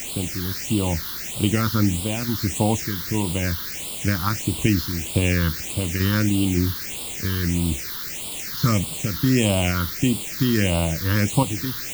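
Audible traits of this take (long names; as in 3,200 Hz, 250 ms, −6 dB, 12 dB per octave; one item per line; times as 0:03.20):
sample-and-hold tremolo, depth 65%
a quantiser's noise floor 6 bits, dither triangular
phaser sweep stages 6, 1.6 Hz, lowest notch 640–1,700 Hz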